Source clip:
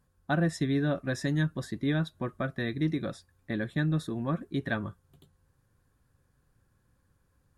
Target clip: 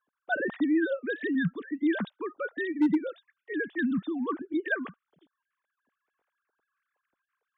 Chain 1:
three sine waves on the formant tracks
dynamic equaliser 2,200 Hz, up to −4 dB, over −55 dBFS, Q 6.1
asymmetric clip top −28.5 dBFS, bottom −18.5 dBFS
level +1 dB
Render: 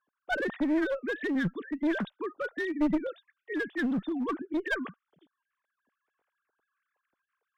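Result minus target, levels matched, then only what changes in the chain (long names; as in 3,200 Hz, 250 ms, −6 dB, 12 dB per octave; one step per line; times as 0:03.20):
asymmetric clip: distortion +12 dB
change: asymmetric clip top −18.5 dBFS, bottom −18.5 dBFS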